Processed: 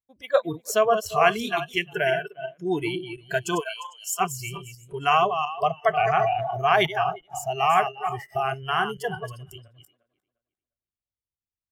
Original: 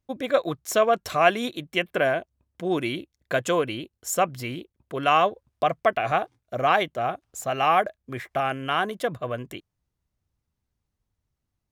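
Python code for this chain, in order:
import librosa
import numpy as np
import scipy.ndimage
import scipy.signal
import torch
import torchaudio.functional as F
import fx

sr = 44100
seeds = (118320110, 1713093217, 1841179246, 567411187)

y = fx.reverse_delay_fb(x, sr, ms=176, feedback_pct=48, wet_db=-6.5)
y = fx.highpass(y, sr, hz=620.0, slope=24, at=(3.59, 4.19), fade=0.02)
y = fx.noise_reduce_blind(y, sr, reduce_db=23)
y = fx.sustainer(y, sr, db_per_s=29.0, at=(5.98, 6.85), fade=0.02)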